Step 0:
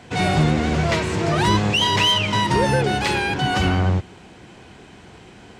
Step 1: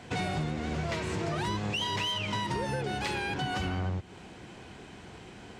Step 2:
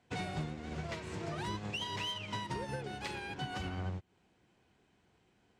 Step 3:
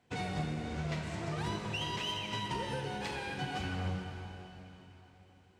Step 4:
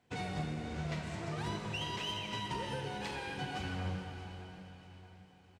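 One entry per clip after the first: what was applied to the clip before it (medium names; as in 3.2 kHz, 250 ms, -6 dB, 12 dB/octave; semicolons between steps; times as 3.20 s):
compression 6:1, threshold -26 dBFS, peak gain reduction 12 dB; trim -3.5 dB
upward expansion 2.5:1, over -42 dBFS; trim -4 dB
reverberation RT60 3.7 s, pre-delay 7 ms, DRR 1.5 dB
feedback delay 631 ms, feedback 41%, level -15 dB; trim -2 dB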